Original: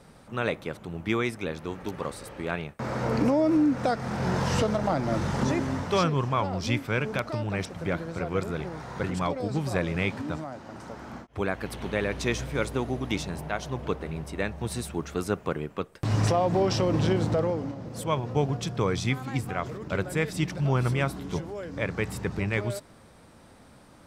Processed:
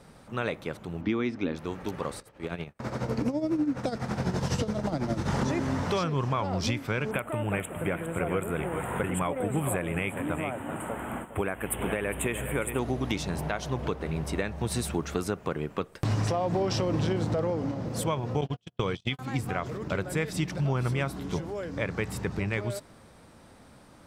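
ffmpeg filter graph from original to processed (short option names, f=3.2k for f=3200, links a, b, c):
-filter_complex "[0:a]asettb=1/sr,asplit=3[a][b][c];[a]atrim=end=1.014[d];[b]atrim=start=1.01:end=1.56,asetpts=PTS-STARTPTS,afade=t=in:d=0.004:c=qsin,afade=t=out:st=0.546:d=0.004:c=qsin,lowpass=f=5.5k:w=0.5412,lowpass=f=5.5k:w=1.3066,equalizer=f=270:t=o:w=0.61:g=13.5[e];[c]atrim=start=1.556[f];[d][e]acrossfade=d=0.004:c1=hsin:c2=qsin[g];[g][f]acrossfade=d=0.004:c1=qsin:c2=hsin,asettb=1/sr,asplit=3[h][i][j];[h]atrim=end=2.204[k];[i]atrim=start=2.2:end=5.28,asetpts=PTS-STARTPTS,afade=t=in:d=0.004:c=qsin,afade=t=out:st=3.076:d=0.004:c=qsin,agate=range=-11dB:threshold=-38dB:ratio=16:release=100:detection=peak,acrossover=split=500|3000[l][m][n];[m]acompressor=threshold=-35dB:ratio=6:attack=3.2:release=140:knee=2.83:detection=peak[o];[l][o][n]amix=inputs=3:normalize=0,tremolo=f=12:d=0.69[p];[j]atrim=start=5.276[q];[k][p]acrossfade=d=0.004:c1=hsin:c2=qsin[r];[r][q]acrossfade=d=0.004:c1=qsin:c2=hsin,asettb=1/sr,asplit=3[s][t][u];[s]atrim=end=7.114[v];[t]atrim=start=7.11:end=12.79,asetpts=PTS-STARTPTS,afade=t=in:d=0.004:c=qsin,afade=t=out:st=5.676:d=0.004:c=qsin,asuperstop=centerf=5100:order=8:qfactor=1,bass=f=250:g=-3,treble=f=4k:g=12,aecho=1:1:408:0.237,atrim=end_sample=250488[w];[u]atrim=start=12.786[x];[v][w]acrossfade=d=0.004:c1=hsin:c2=qsin[y];[y][x]acrossfade=d=0.004:c1=qsin:c2=hsin,asettb=1/sr,asplit=3[z][aa][ab];[z]atrim=end=18.414[ac];[aa]atrim=start=18.41:end=19.19,asetpts=PTS-STARTPTS,afade=t=in:d=0.004:c=qsin,afade=t=out:st=0.776:d=0.004:c=qsin,agate=range=-49dB:threshold=-27dB:ratio=16:release=100:detection=peak,equalizer=f=3.1k:t=o:w=0.49:g=14.5[ad];[ab]atrim=start=19.186[ae];[ac][ad]acrossfade=d=0.004:c1=hsin:c2=qsin[af];[af][ae]acrossfade=d=0.004:c1=qsin:c2=hsin,dynaudnorm=f=730:g=11:m=7dB,alimiter=limit=-13dB:level=0:latency=1:release=439,acompressor=threshold=-26dB:ratio=2.5"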